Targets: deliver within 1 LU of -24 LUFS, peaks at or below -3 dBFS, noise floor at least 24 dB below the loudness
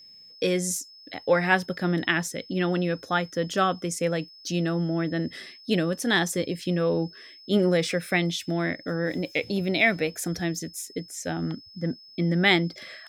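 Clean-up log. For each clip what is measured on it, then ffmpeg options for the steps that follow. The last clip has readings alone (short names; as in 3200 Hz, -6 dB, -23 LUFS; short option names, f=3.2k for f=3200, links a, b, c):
steady tone 5200 Hz; tone level -47 dBFS; loudness -26.5 LUFS; peak -7.0 dBFS; loudness target -24.0 LUFS
-> -af "bandreject=f=5.2k:w=30"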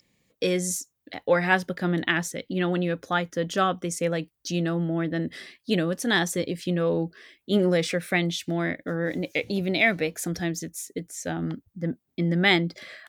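steady tone none; loudness -26.5 LUFS; peak -7.0 dBFS; loudness target -24.0 LUFS
-> -af "volume=2.5dB"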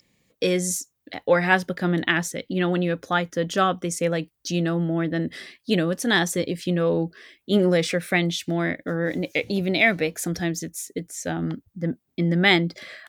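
loudness -24.0 LUFS; peak -4.5 dBFS; noise floor -73 dBFS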